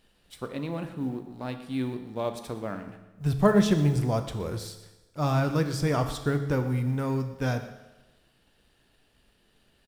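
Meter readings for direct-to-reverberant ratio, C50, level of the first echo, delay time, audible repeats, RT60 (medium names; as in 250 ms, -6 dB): 7.0 dB, 9.5 dB, -17.5 dB, 121 ms, 1, 1.1 s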